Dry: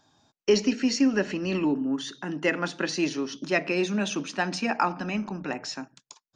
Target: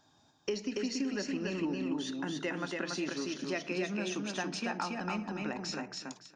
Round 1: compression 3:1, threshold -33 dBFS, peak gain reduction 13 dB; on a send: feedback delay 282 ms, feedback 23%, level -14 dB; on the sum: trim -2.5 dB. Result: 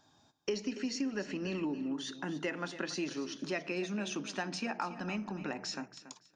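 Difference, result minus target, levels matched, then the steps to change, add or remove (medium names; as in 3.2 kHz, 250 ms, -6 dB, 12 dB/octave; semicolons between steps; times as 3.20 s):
echo-to-direct -11 dB
change: feedback delay 282 ms, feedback 23%, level -3 dB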